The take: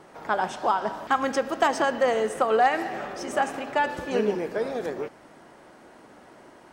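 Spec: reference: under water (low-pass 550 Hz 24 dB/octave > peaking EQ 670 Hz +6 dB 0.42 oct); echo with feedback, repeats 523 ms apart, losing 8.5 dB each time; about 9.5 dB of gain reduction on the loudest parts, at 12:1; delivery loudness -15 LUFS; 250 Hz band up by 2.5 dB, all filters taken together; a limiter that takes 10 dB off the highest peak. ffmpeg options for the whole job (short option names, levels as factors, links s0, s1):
-af "equalizer=f=250:t=o:g=3,acompressor=threshold=0.0562:ratio=12,alimiter=limit=0.0668:level=0:latency=1,lowpass=f=550:w=0.5412,lowpass=f=550:w=1.3066,equalizer=f=670:t=o:w=0.42:g=6,aecho=1:1:523|1046|1569|2092:0.376|0.143|0.0543|0.0206,volume=10.6"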